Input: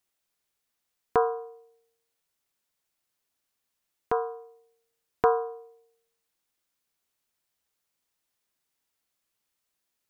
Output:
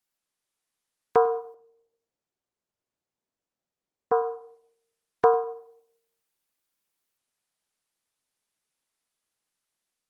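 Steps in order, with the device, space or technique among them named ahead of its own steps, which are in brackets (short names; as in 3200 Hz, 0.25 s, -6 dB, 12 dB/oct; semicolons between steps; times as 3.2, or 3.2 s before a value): 1.54–4.31 low-pass opened by the level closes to 640 Hz, open at -26.5 dBFS; tape echo 97 ms, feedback 33%, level -19 dB, low-pass 2700 Hz; dynamic EQ 570 Hz, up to +5 dB, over -35 dBFS, Q 1.1; video call (HPF 110 Hz 12 dB/oct; AGC gain up to 4 dB; gain -3.5 dB; Opus 24 kbps 48000 Hz)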